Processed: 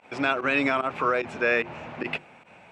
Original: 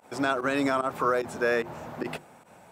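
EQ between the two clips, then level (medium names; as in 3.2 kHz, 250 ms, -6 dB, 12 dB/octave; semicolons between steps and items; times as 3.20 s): distance through air 100 m; peaking EQ 2.5 kHz +13.5 dB 0.77 oct; 0.0 dB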